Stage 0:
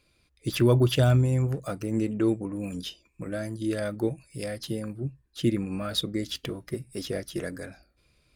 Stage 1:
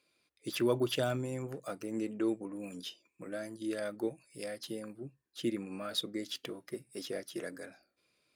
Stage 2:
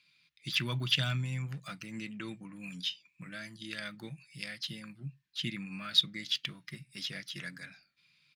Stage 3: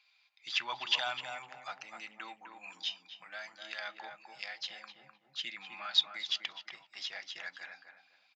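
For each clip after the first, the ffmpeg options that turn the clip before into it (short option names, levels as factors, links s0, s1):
-af "highpass=260,volume=0.501"
-af "firequalizer=gain_entry='entry(100,0);entry(150,12);entry(230,-4);entry(400,-19);entry(1000,-3);entry(2100,9);entry(3700,10);entry(8500,-5)':delay=0.05:min_phase=1"
-filter_complex "[0:a]aresample=16000,aresample=44100,highpass=f=800:t=q:w=7.4,asplit=2[s0][s1];[s1]adelay=254,lowpass=f=1200:p=1,volume=0.596,asplit=2[s2][s3];[s3]adelay=254,lowpass=f=1200:p=1,volume=0.32,asplit=2[s4][s5];[s5]adelay=254,lowpass=f=1200:p=1,volume=0.32,asplit=2[s6][s7];[s7]adelay=254,lowpass=f=1200:p=1,volume=0.32[s8];[s0][s2][s4][s6][s8]amix=inputs=5:normalize=0,volume=0.794"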